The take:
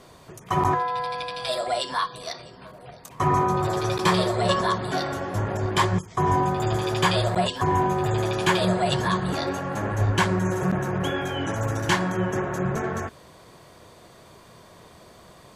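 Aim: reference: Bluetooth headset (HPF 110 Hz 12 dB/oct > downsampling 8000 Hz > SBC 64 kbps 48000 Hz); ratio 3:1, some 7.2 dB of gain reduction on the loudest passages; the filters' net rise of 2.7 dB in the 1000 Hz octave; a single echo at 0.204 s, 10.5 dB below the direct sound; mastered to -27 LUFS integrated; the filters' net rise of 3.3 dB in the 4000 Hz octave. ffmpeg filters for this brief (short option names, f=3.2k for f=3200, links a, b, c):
-af "equalizer=f=1k:t=o:g=3,equalizer=f=4k:t=o:g=4,acompressor=threshold=-24dB:ratio=3,highpass=110,aecho=1:1:204:0.299,aresample=8000,aresample=44100,volume=0.5dB" -ar 48000 -c:a sbc -b:a 64k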